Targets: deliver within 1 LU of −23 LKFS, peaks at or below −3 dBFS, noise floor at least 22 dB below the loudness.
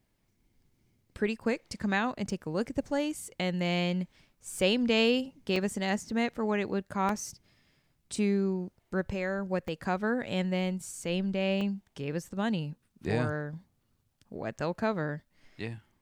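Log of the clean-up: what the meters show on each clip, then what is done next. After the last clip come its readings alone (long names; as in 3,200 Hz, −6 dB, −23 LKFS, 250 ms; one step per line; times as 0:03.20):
number of dropouts 7; longest dropout 1.8 ms; integrated loudness −31.5 LKFS; sample peak −12.0 dBFS; target loudness −23.0 LKFS
→ repair the gap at 0:02.30/0:03.25/0:05.56/0:07.09/0:08.16/0:09.68/0:11.61, 1.8 ms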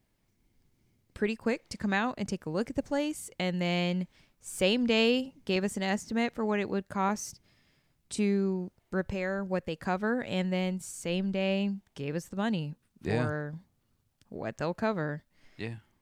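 number of dropouts 0; integrated loudness −31.5 LKFS; sample peak −12.0 dBFS; target loudness −23.0 LKFS
→ level +8.5 dB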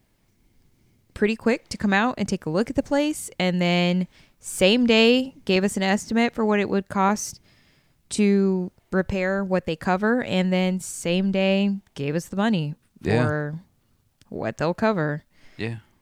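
integrated loudness −23.0 LKFS; sample peak −3.5 dBFS; background noise floor −65 dBFS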